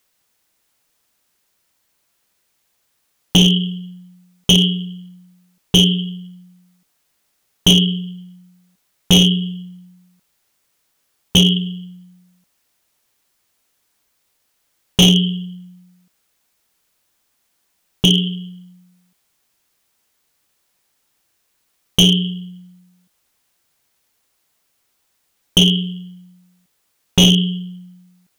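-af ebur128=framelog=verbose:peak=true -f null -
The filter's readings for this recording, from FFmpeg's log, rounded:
Integrated loudness:
  I:         -15.0 LUFS
  Threshold: -30.6 LUFS
Loudness range:
  LRA:         5.5 LU
  Threshold: -40.5 LUFS
  LRA low:   -23.2 LUFS
  LRA high:  -17.8 LUFS
True peak:
  Peak:       -4.9 dBFS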